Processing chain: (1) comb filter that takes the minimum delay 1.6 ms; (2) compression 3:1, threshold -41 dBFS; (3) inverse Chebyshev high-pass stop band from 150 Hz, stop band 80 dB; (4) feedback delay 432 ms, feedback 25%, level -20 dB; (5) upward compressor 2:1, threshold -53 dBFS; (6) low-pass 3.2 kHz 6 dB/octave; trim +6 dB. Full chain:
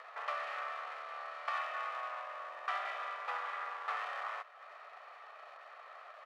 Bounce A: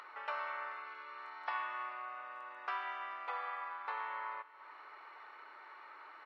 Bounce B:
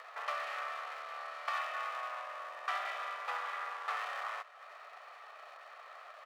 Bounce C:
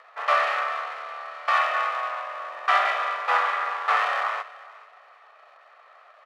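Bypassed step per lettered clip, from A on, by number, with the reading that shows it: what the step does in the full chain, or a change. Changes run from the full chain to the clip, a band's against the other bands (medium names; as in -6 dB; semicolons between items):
1, 4 kHz band -3.5 dB; 6, 4 kHz band +2.5 dB; 2, mean gain reduction 9.5 dB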